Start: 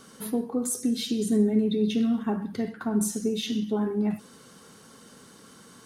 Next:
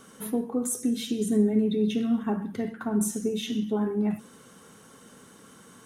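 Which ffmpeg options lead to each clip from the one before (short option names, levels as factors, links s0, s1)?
-af "equalizer=f=4600:w=3.1:g=-9.5,bandreject=f=74.77:t=h:w=4,bandreject=f=149.54:t=h:w=4,bandreject=f=224.31:t=h:w=4,bandreject=f=299.08:t=h:w=4,bandreject=f=373.85:t=h:w=4"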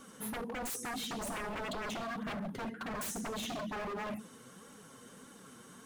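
-af "flanger=delay=3.5:depth=5:regen=29:speed=1.7:shape=sinusoidal,aeval=exprs='0.0178*(abs(mod(val(0)/0.0178+3,4)-2)-1)':c=same,volume=1.12"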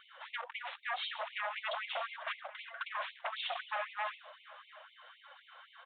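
-af "aecho=1:1:681:0.112,aresample=8000,aresample=44100,afftfilt=real='re*gte(b*sr/1024,480*pow(2100/480,0.5+0.5*sin(2*PI*3.9*pts/sr)))':imag='im*gte(b*sr/1024,480*pow(2100/480,0.5+0.5*sin(2*PI*3.9*pts/sr)))':win_size=1024:overlap=0.75,volume=1.78"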